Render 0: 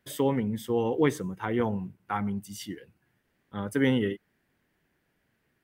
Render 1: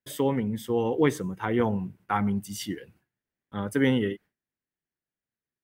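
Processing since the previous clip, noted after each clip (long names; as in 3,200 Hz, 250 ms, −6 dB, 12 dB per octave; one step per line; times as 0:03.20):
noise gate with hold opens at −56 dBFS
speech leveller within 4 dB 2 s
level +1.5 dB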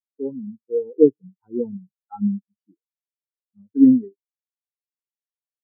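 every bin expanded away from the loudest bin 4 to 1
level +7.5 dB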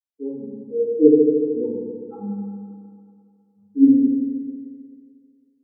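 feedback delay network reverb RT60 2.3 s, low-frequency decay 0.85×, high-frequency decay 1×, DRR −7.5 dB
level −8.5 dB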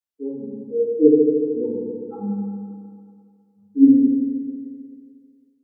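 automatic gain control gain up to 3 dB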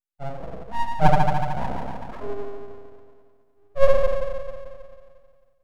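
full-wave rectification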